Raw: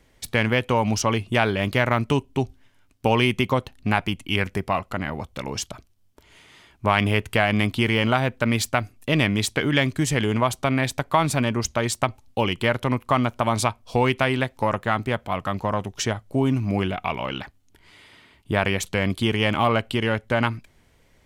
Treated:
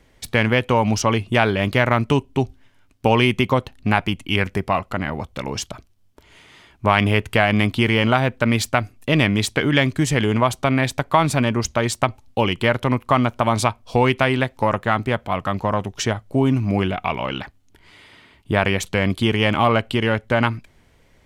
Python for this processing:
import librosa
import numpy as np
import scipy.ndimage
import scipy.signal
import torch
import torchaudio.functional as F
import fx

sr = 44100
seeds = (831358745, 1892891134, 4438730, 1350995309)

y = fx.high_shelf(x, sr, hz=5700.0, db=-4.5)
y = F.gain(torch.from_numpy(y), 3.5).numpy()